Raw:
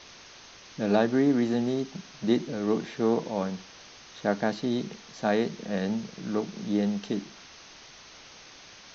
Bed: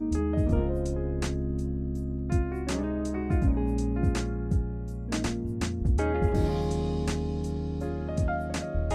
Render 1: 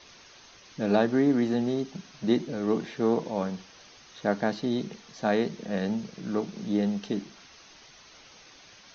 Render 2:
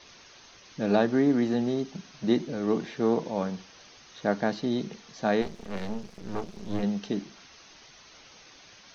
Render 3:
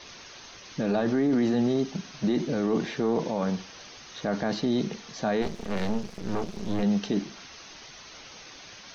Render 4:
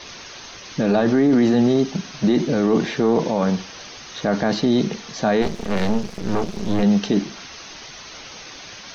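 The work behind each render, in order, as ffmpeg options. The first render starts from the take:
ffmpeg -i in.wav -af "afftdn=noise_reduction=6:noise_floor=-50" out.wav
ffmpeg -i in.wav -filter_complex "[0:a]asplit=3[link_01][link_02][link_03];[link_01]afade=type=out:start_time=5.41:duration=0.02[link_04];[link_02]aeval=exprs='max(val(0),0)':channel_layout=same,afade=type=in:start_time=5.41:duration=0.02,afade=type=out:start_time=6.82:duration=0.02[link_05];[link_03]afade=type=in:start_time=6.82:duration=0.02[link_06];[link_04][link_05][link_06]amix=inputs=3:normalize=0" out.wav
ffmpeg -i in.wav -af "acontrast=54,alimiter=limit=-17.5dB:level=0:latency=1:release=13" out.wav
ffmpeg -i in.wav -af "volume=8dB" out.wav

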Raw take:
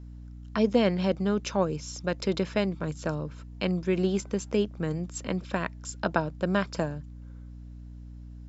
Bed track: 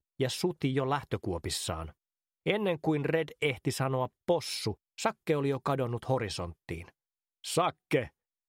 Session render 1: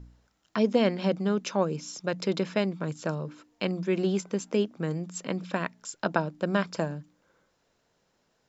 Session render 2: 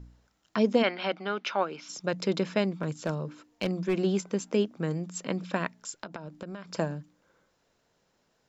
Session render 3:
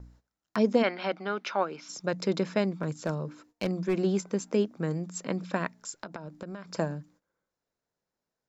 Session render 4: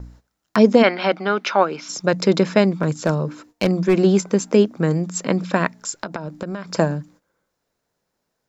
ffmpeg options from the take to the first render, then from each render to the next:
ffmpeg -i in.wav -af "bandreject=frequency=60:width_type=h:width=4,bandreject=frequency=120:width_type=h:width=4,bandreject=frequency=180:width_type=h:width=4,bandreject=frequency=240:width_type=h:width=4,bandreject=frequency=300:width_type=h:width=4" out.wav
ffmpeg -i in.wav -filter_complex "[0:a]asplit=3[link_01][link_02][link_03];[link_01]afade=type=out:start_time=0.82:duration=0.02[link_04];[link_02]highpass=410,equalizer=frequency=490:width_type=q:width=4:gain=-6,equalizer=frequency=760:width_type=q:width=4:gain=4,equalizer=frequency=1400:width_type=q:width=4:gain=8,equalizer=frequency=2200:width_type=q:width=4:gain=7,equalizer=frequency=3100:width_type=q:width=4:gain=5,lowpass=frequency=4900:width=0.5412,lowpass=frequency=4900:width=1.3066,afade=type=in:start_time=0.82:duration=0.02,afade=type=out:start_time=1.88:duration=0.02[link_05];[link_03]afade=type=in:start_time=1.88:duration=0.02[link_06];[link_04][link_05][link_06]amix=inputs=3:normalize=0,asettb=1/sr,asplit=3[link_07][link_08][link_09];[link_07]atrim=end=2.824[link_10];[link_08]atrim=start=2.82:end=3.96,asetpts=PTS-STARTPTS,afade=type=in:duration=0.004:curve=qsin,afade=type=out:start_time=1.136:duration=0.004:curve=qsin,asoftclip=type=hard:threshold=-20.5dB[link_11];[link_09]atrim=start=3.956[link_12];[link_10][link_11]acrossfade=duration=0.004:curve1=hsin:curve2=qsin[link_13];[link_13][link_12]acrossfade=duration=0.004:curve1=qsin:curve2=hsin,asettb=1/sr,asplit=3[link_14][link_15][link_16];[link_14]atrim=end=5.984[link_17];[link_15]atrim=start=5.98:end=6.74,asetpts=PTS-STARTPTS,afade=type=in:duration=0.004:curve=qsin,afade=type=out:start_time=0.756:duration=0.004:curve=qsin,acompressor=threshold=-35dB:ratio=16:attack=3.2:release=140:knee=1:detection=peak[link_18];[link_16]atrim=start=6.736[link_19];[link_17][link_18]acrossfade=duration=0.004:curve1=hsin:curve2=qsin[link_20];[link_20][link_19]acrossfade=duration=0.004:curve1=qsin:curve2=hsin" out.wav
ffmpeg -i in.wav -af "agate=range=-16dB:threshold=-58dB:ratio=16:detection=peak,equalizer=frequency=3000:width=2.4:gain=-5.5" out.wav
ffmpeg -i in.wav -af "volume=11.5dB,alimiter=limit=-1dB:level=0:latency=1" out.wav

